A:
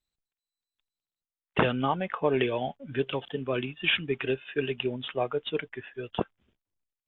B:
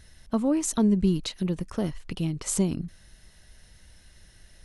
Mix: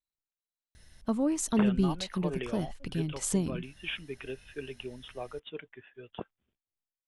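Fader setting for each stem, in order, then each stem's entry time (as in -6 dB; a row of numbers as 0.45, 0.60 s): -11.0, -4.0 dB; 0.00, 0.75 s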